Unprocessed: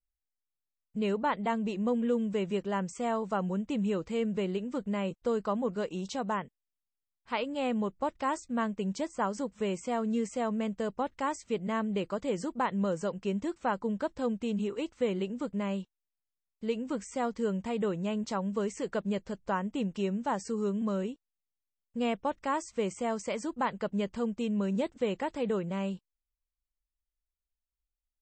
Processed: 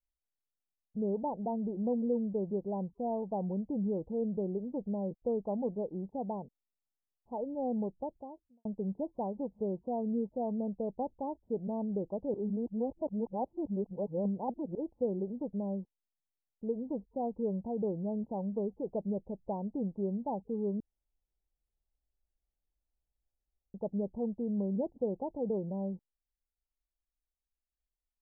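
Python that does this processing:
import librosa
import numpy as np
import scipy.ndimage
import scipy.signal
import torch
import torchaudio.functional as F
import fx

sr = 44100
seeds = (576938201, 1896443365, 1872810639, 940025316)

y = fx.studio_fade_out(x, sr, start_s=7.71, length_s=0.94)
y = fx.edit(y, sr, fx.reverse_span(start_s=12.34, length_s=2.41),
    fx.room_tone_fill(start_s=20.8, length_s=2.94), tone=tone)
y = scipy.signal.sosfilt(scipy.signal.butter(12, 870.0, 'lowpass', fs=sr, output='sos'), y)
y = F.gain(torch.from_numpy(y), -2.5).numpy()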